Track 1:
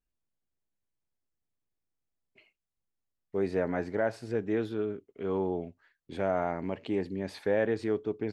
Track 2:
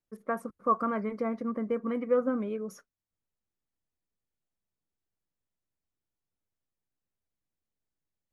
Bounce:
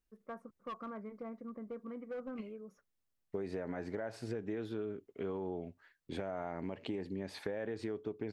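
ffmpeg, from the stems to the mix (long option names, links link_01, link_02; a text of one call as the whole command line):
ffmpeg -i stem1.wav -i stem2.wav -filter_complex "[0:a]alimiter=limit=-22.5dB:level=0:latency=1:release=66,volume=1dB,asplit=2[link_01][link_02];[1:a]volume=24.5dB,asoftclip=hard,volume=-24.5dB,lowpass=frequency=1900:poles=1,volume=-1dB[link_03];[link_02]apad=whole_len=367019[link_04];[link_03][link_04]sidechaingate=range=-12dB:threshold=-56dB:ratio=16:detection=peak[link_05];[link_01][link_05]amix=inputs=2:normalize=0,acompressor=threshold=-36dB:ratio=6" out.wav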